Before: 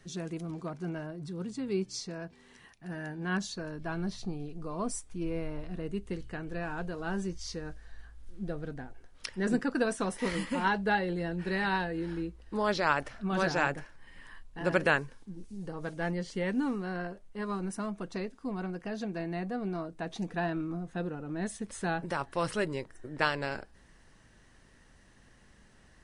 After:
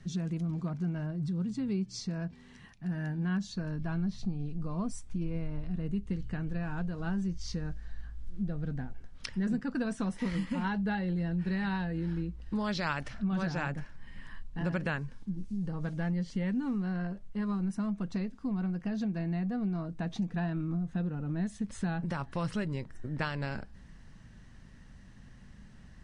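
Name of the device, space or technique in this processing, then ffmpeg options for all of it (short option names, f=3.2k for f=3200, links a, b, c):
jukebox: -filter_complex "[0:a]lowpass=7.3k,lowshelf=f=270:t=q:w=1.5:g=8.5,acompressor=threshold=-31dB:ratio=3,asplit=3[a][b][c];[a]afade=t=out:st=12.41:d=0.02[d];[b]adynamicequalizer=threshold=0.00447:dfrequency=1800:dqfactor=0.7:tfrequency=1800:tqfactor=0.7:attack=5:release=100:ratio=0.375:range=3:mode=boostabove:tftype=highshelf,afade=t=in:st=12.41:d=0.02,afade=t=out:st=13.13:d=0.02[e];[c]afade=t=in:st=13.13:d=0.02[f];[d][e][f]amix=inputs=3:normalize=0"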